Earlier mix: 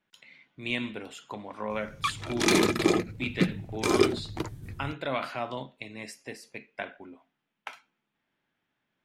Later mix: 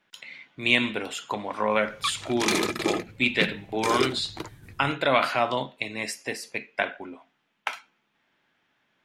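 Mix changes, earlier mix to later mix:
speech +11.0 dB; master: add bass shelf 360 Hz -7.5 dB

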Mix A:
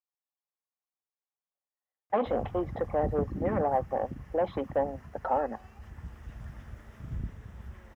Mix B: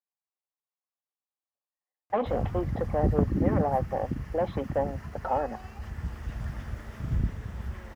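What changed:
background +8.5 dB; master: add peaking EQ 4.5 kHz +5 dB 0.29 oct

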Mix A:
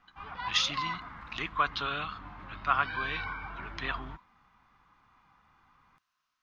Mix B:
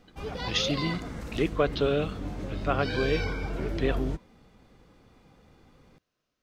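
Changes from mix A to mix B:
background: remove distance through air 400 m; master: add resonant low shelf 720 Hz +13 dB, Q 3

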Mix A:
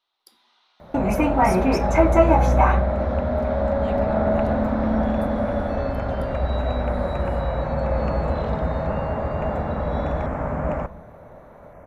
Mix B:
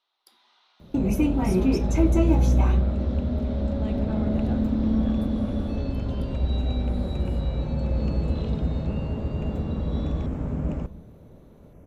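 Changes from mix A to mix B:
speech -5.0 dB; second sound: add high-order bell 1.1 kHz -16 dB 2.3 oct

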